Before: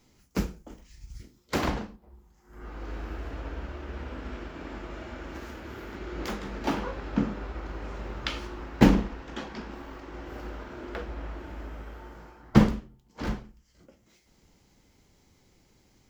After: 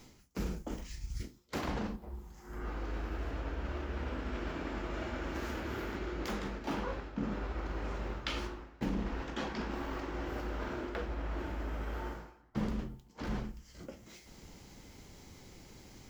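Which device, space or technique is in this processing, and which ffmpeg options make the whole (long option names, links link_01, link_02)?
compression on the reversed sound: -af "areverse,acompressor=threshold=-44dB:ratio=6,areverse,volume=9dB"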